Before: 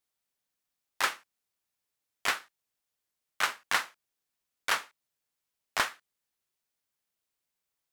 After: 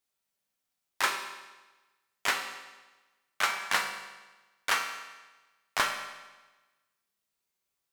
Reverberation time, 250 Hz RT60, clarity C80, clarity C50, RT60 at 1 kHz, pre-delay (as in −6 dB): 1.2 s, 1.2 s, 8.0 dB, 6.5 dB, 1.2 s, 5 ms